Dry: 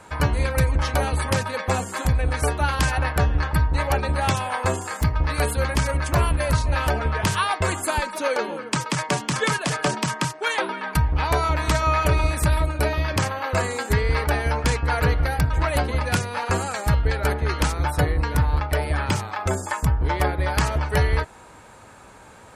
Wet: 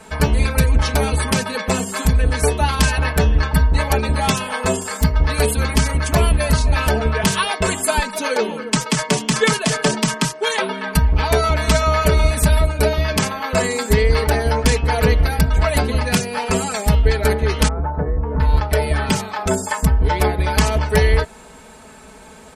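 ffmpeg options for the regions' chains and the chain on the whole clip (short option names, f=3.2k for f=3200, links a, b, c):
-filter_complex "[0:a]asettb=1/sr,asplit=3[a][b][c];[a]atrim=end=17.684[d];[b]atrim=start=17.68:end=18.4,asetpts=PTS-STARTPTS,afade=t=in:d=0.004:c=qsin,afade=t=out:st=0.716:d=0.004:c=qsin,lowpass=f=1.3k:w=0.5412,lowpass=f=1.3k:w=1.3066,acompressor=threshold=-23dB:ratio=2.5:attack=3.2:release=140:knee=1:detection=peak[e];[c]atrim=start=18.396[f];[d][e]acrossfade=d=0.004:c1=hsin:c2=qsin[g];[g][f]acrossfade=d=0.004:c1=qsin:c2=hsin,equalizer=f=1.2k:t=o:w=1.5:g=-6,aecho=1:1:4.6:0.98,volume=4.5dB"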